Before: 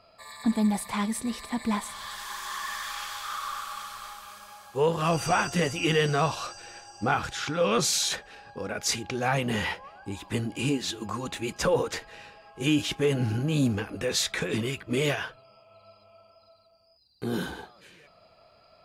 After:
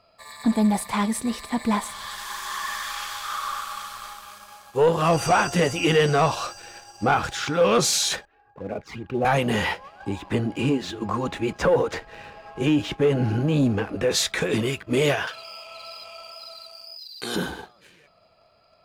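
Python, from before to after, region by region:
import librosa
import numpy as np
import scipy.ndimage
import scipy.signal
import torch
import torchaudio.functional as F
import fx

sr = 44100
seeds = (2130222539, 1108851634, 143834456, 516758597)

y = fx.chain(x, sr, fx.lowpass(hz=1700.0, slope=12),
    fx.env_flanger(rest_ms=3.7, full_db=-29.5),
    fx.band_widen(depth_pct=40), at=(8.25, 9.25))
y = fx.chain(y, sr, fx.lowpass(hz=2200.0, slope=6),
    fx.band_squash(depth_pct=40), at=(10.0, 14.11))
y = fx.chain(y, sr, fx.weighting(curve='ITU-R 468'),
    fx.env_flatten(amount_pct=50), at=(15.27, 17.36))
y = fx.dynamic_eq(y, sr, hz=620.0, q=0.73, threshold_db=-36.0, ratio=4.0, max_db=4)
y = fx.leveller(y, sr, passes=1)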